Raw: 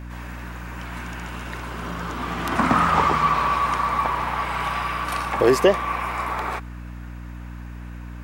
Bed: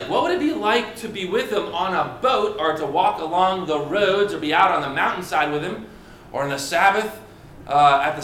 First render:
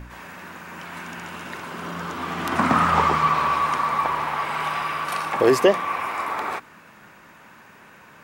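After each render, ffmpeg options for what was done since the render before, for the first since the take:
-af "bandreject=f=60:t=h:w=4,bandreject=f=120:t=h:w=4,bandreject=f=180:t=h:w=4,bandreject=f=240:t=h:w=4,bandreject=f=300:t=h:w=4"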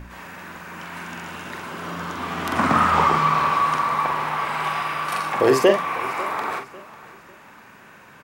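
-filter_complex "[0:a]asplit=2[a][b];[b]adelay=45,volume=-6dB[c];[a][c]amix=inputs=2:normalize=0,aecho=1:1:547|1094|1641:0.106|0.0381|0.0137"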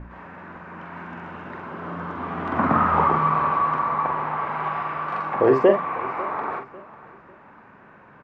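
-af "lowpass=1.4k"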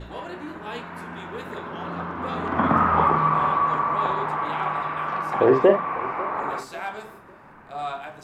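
-filter_complex "[1:a]volume=-16.5dB[a];[0:a][a]amix=inputs=2:normalize=0"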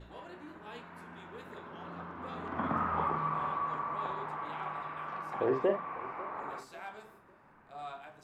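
-af "volume=-13dB"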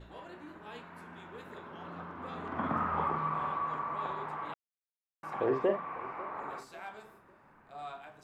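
-filter_complex "[0:a]asplit=3[a][b][c];[a]atrim=end=4.54,asetpts=PTS-STARTPTS,afade=t=out:st=4.536:d=0.004:c=hsin[d];[b]atrim=start=4.54:end=5.23,asetpts=PTS-STARTPTS,volume=0[e];[c]atrim=start=5.23,asetpts=PTS-STARTPTS,afade=t=in:d=0.004:c=hsin[f];[d][e][f]concat=n=3:v=0:a=1"

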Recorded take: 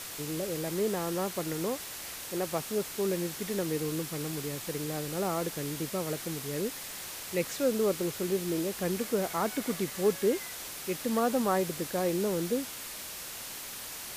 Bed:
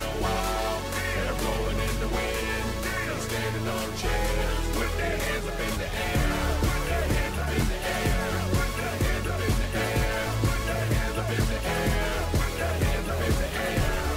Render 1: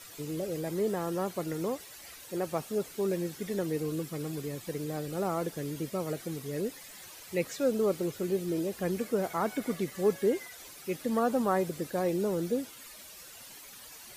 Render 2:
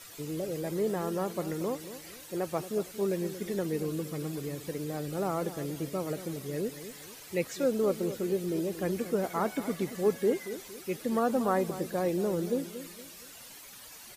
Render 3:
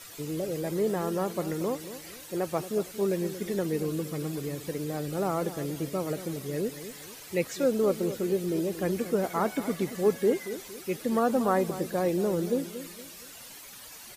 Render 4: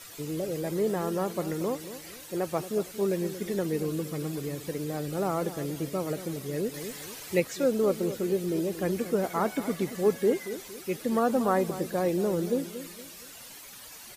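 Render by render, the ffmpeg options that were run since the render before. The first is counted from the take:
-af "afftdn=nr=12:nf=-42"
-filter_complex "[0:a]asplit=2[a][b];[b]adelay=231,lowpass=f=940:p=1,volume=-11.5dB,asplit=2[c][d];[d]adelay=231,lowpass=f=940:p=1,volume=0.4,asplit=2[e][f];[f]adelay=231,lowpass=f=940:p=1,volume=0.4,asplit=2[g][h];[h]adelay=231,lowpass=f=940:p=1,volume=0.4[i];[a][c][e][g][i]amix=inputs=5:normalize=0"
-af "volume=2.5dB"
-filter_complex "[0:a]asplit=3[a][b][c];[a]atrim=end=6.742[d];[b]atrim=start=6.738:end=7.402,asetpts=PTS-STARTPTS,volume=3.5dB[e];[c]atrim=start=7.398[f];[d][e]acrossfade=d=0.004:c1=hsin:c2=hsin[g];[g][f]acrossfade=d=0.004:c1=hsin:c2=hsin"

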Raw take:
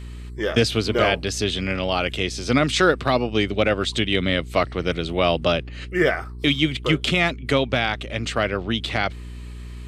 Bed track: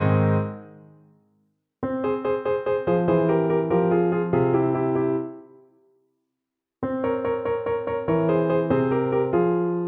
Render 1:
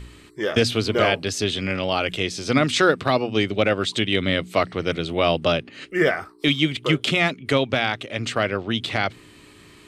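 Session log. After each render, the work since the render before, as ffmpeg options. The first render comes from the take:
-af "bandreject=f=60:t=h:w=4,bandreject=f=120:t=h:w=4,bandreject=f=180:t=h:w=4,bandreject=f=240:t=h:w=4"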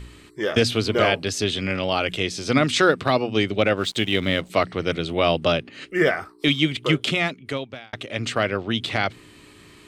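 -filter_complex "[0:a]asettb=1/sr,asplit=3[a][b][c];[a]atrim=end=3.764[d];[b]atrim=start=3.76:end=4.5,asetpts=PTS-STARTPTS,afade=t=in:d=0.004:c=qsin,afade=t=out:st=0.736:d=0.004:c=qsin,aeval=exprs='sgn(val(0))*max(abs(val(0))-0.00708,0)':c=same[e];[c]atrim=start=4.496[f];[d][e]acrossfade=d=0.004:c1=hsin:c2=qsin[g];[g][f]acrossfade=d=0.004:c1=qsin:c2=hsin,asplit=2[h][i];[h]atrim=end=7.93,asetpts=PTS-STARTPTS,afade=t=out:st=6.95:d=0.98[j];[i]atrim=start=7.93,asetpts=PTS-STARTPTS,afade=t=in:d=0.004:c=hsin[k];[j][k]concat=n=2:v=0:a=1"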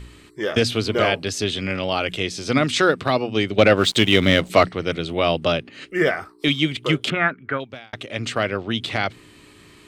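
-filter_complex "[0:a]asettb=1/sr,asplit=3[a][b][c];[a]atrim=end=3.584[d];[b]atrim=start=3.58:end=4.69,asetpts=PTS-STARTPTS,afade=t=in:d=0.004:c=qsin,afade=t=out:st=1.106:d=0.004:c=qsin,acontrast=82[e];[c]atrim=start=4.686[f];[d][e]acrossfade=d=0.004:c1=hsin:c2=qsin[g];[g][f]acrossfade=d=0.004:c1=qsin:c2=hsin,asettb=1/sr,asplit=3[h][i][j];[h]atrim=end=7.104[k];[i]atrim=start=7.1:end=7.6,asetpts=PTS-STARTPTS,afade=t=in:d=0.004:c=qsin,afade=t=out:st=0.496:d=0.004:c=qsin,lowpass=f=1.5k:t=q:w=7.2[l];[j]atrim=start=7.596[m];[k][l]acrossfade=d=0.004:c1=hsin:c2=qsin[n];[n][m]acrossfade=d=0.004:c1=qsin:c2=hsin"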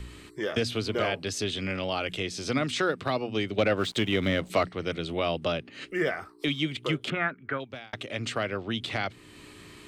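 -filter_complex "[0:a]acrossover=split=190|2300[a][b][c];[c]alimiter=limit=-16dB:level=0:latency=1:release=127[d];[a][b][d]amix=inputs=3:normalize=0,acompressor=threshold=-39dB:ratio=1.5"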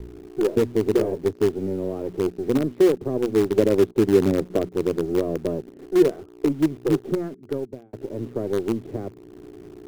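-filter_complex "[0:a]lowpass=f=390:t=q:w=4.1,asplit=2[a][b];[b]acrusher=bits=4:dc=4:mix=0:aa=0.000001,volume=-9dB[c];[a][c]amix=inputs=2:normalize=0"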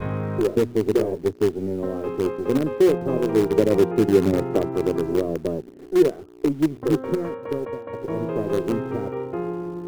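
-filter_complex "[1:a]volume=-7.5dB[a];[0:a][a]amix=inputs=2:normalize=0"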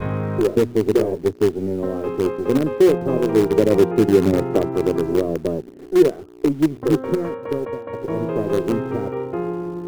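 -af "volume=3dB,alimiter=limit=-3dB:level=0:latency=1"

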